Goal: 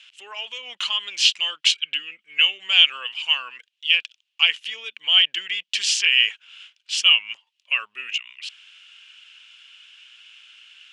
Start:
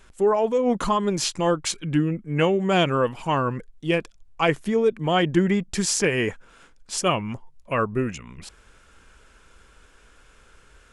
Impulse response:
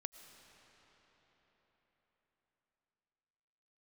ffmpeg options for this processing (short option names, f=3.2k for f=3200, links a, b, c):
-filter_complex "[0:a]lowpass=5k,asplit=2[a][b];[b]alimiter=limit=-18dB:level=0:latency=1,volume=-2dB[c];[a][c]amix=inputs=2:normalize=0,highpass=f=2.9k:t=q:w=6.6"